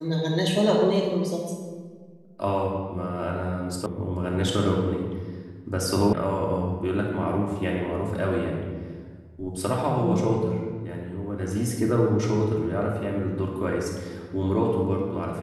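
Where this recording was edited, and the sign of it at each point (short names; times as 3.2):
3.86 sound cut off
6.13 sound cut off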